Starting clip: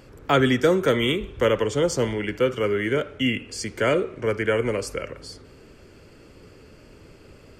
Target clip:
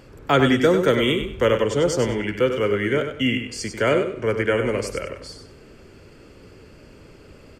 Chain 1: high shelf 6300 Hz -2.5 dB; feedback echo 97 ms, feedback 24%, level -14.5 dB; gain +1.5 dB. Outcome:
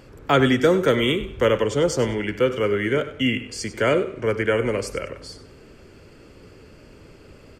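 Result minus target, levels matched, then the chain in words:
echo-to-direct -6.5 dB
high shelf 6300 Hz -2.5 dB; feedback echo 97 ms, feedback 24%, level -8 dB; gain +1.5 dB

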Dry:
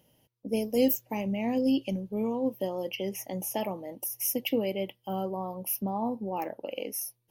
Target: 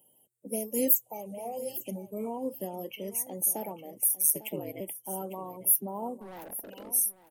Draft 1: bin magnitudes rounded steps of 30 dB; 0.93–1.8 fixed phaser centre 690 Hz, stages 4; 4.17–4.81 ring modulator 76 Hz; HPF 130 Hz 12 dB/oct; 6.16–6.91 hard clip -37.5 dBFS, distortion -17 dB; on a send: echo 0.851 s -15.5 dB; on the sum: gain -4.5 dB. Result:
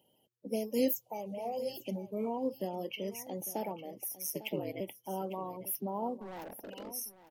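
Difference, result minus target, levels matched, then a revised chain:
8000 Hz band -6.5 dB
bin magnitudes rounded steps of 30 dB; 0.93–1.8 fixed phaser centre 690 Hz, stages 4; 4.17–4.81 ring modulator 76 Hz; HPF 130 Hz 12 dB/oct; resonant high shelf 6500 Hz +11 dB, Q 3; 6.16–6.91 hard clip -37.5 dBFS, distortion -22 dB; on a send: echo 0.851 s -15.5 dB; on the sum: gain -4.5 dB

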